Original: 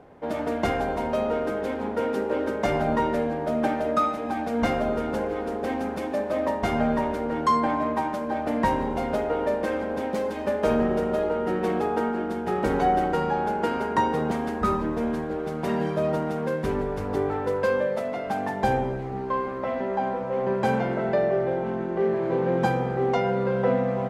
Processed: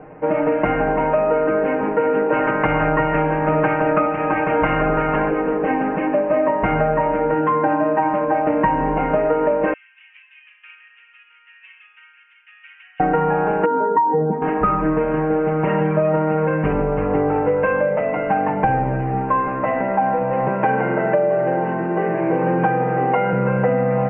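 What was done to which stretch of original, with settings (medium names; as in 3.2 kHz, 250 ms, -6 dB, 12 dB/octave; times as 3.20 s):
2.31–5.29 s: spectral peaks clipped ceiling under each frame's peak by 14 dB
7.34–8.02 s: comb of notches 1.1 kHz
9.73–13.00 s: inverse Chebyshev high-pass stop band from 680 Hz, stop band 70 dB
13.65–14.42 s: spectral contrast enhancement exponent 2.1
20.48–23.33 s: high-pass 180 Hz
whole clip: steep low-pass 2.8 kHz 96 dB/octave; comb 6.5 ms, depth 86%; compression, threshold -22 dBFS; trim +8 dB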